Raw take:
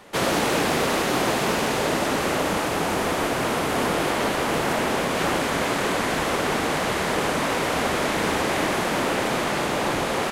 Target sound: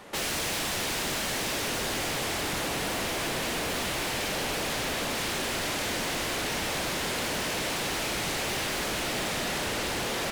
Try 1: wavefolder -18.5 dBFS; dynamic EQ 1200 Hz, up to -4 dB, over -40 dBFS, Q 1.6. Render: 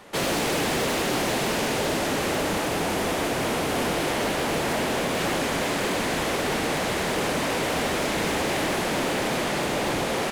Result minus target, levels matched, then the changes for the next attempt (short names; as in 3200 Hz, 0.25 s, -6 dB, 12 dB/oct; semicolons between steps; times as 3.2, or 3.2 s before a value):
wavefolder: distortion -16 dB
change: wavefolder -25 dBFS